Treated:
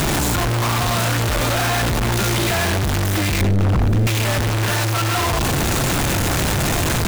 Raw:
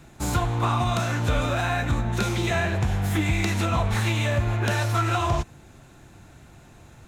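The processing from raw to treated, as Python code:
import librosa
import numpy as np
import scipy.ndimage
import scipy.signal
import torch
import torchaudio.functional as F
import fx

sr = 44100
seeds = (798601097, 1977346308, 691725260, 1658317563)

p1 = np.sign(x) * np.sqrt(np.mean(np.square(x)))
p2 = fx.tilt_eq(p1, sr, slope=-4.0, at=(3.41, 4.07))
p3 = np.clip(p2, -10.0 ** (-20.5 / 20.0), 10.0 ** (-20.5 / 20.0))
p4 = p3 + fx.echo_single(p3, sr, ms=773, db=-21.0, dry=0)
y = p4 * 10.0 ** (6.0 / 20.0)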